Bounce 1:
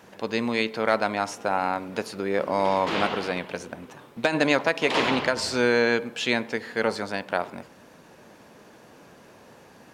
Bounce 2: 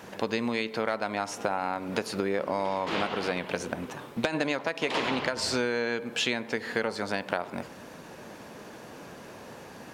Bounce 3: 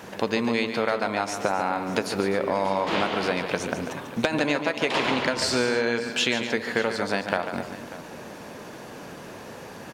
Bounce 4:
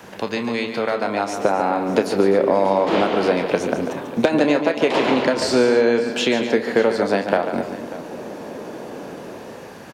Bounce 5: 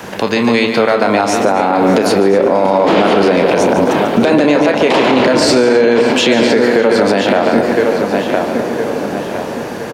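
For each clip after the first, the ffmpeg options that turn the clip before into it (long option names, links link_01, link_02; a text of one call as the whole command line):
ffmpeg -i in.wav -af "acompressor=threshold=-30dB:ratio=10,volume=5.5dB" out.wav
ffmpeg -i in.wav -af "aecho=1:1:144|254|592:0.355|0.178|0.141,volume=4dB" out.wav
ffmpeg -i in.wav -filter_complex "[0:a]acrossover=split=220|730|5600[link_01][link_02][link_03][link_04];[link_02]dynaudnorm=framelen=440:gausssize=5:maxgain=11.5dB[link_05];[link_03]asplit=2[link_06][link_07];[link_07]adelay=30,volume=-6dB[link_08];[link_06][link_08]amix=inputs=2:normalize=0[link_09];[link_01][link_05][link_09][link_04]amix=inputs=4:normalize=0" out.wav
ffmpeg -i in.wav -filter_complex "[0:a]asplit=2[link_01][link_02];[link_02]adelay=1012,lowpass=frequency=4800:poles=1,volume=-9.5dB,asplit=2[link_03][link_04];[link_04]adelay=1012,lowpass=frequency=4800:poles=1,volume=0.42,asplit=2[link_05][link_06];[link_06]adelay=1012,lowpass=frequency=4800:poles=1,volume=0.42,asplit=2[link_07][link_08];[link_08]adelay=1012,lowpass=frequency=4800:poles=1,volume=0.42,asplit=2[link_09][link_10];[link_10]adelay=1012,lowpass=frequency=4800:poles=1,volume=0.42[link_11];[link_03][link_05][link_07][link_09][link_11]amix=inputs=5:normalize=0[link_12];[link_01][link_12]amix=inputs=2:normalize=0,alimiter=level_in=13.5dB:limit=-1dB:release=50:level=0:latency=1,volume=-1dB" out.wav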